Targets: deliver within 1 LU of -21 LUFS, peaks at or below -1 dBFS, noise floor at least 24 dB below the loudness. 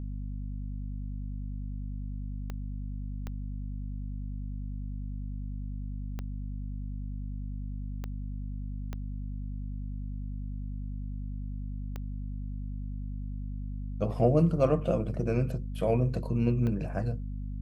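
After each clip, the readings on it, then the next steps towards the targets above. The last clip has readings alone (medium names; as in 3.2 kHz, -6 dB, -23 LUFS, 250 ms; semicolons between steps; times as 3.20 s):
clicks found 7; hum 50 Hz; highest harmonic 250 Hz; hum level -33 dBFS; loudness -34.0 LUFS; peak level -11.5 dBFS; loudness target -21.0 LUFS
-> de-click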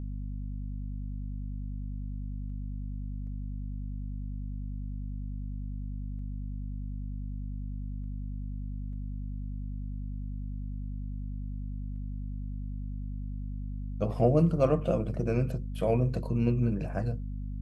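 clicks found 0; hum 50 Hz; highest harmonic 250 Hz; hum level -33 dBFS
-> de-hum 50 Hz, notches 5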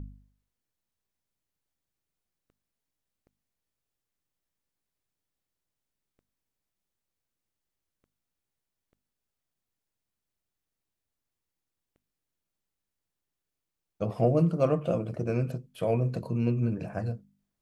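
hum not found; loudness -29.0 LUFS; peak level -12.0 dBFS; loudness target -21.0 LUFS
-> trim +8 dB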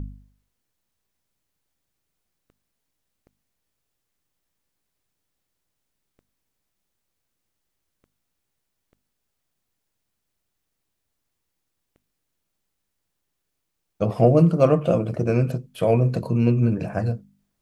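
loudness -21.0 LUFS; peak level -4.0 dBFS; noise floor -79 dBFS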